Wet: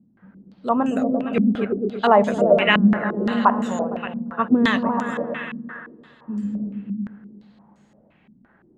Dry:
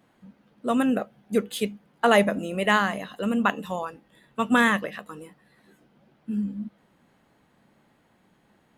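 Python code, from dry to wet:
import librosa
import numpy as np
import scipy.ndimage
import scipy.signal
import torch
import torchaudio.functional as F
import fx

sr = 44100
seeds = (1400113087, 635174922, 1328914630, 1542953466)

y = fx.echo_opening(x, sr, ms=115, hz=200, octaves=1, feedback_pct=70, wet_db=0)
y = fx.filter_held_lowpass(y, sr, hz=5.8, low_hz=220.0, high_hz=7000.0)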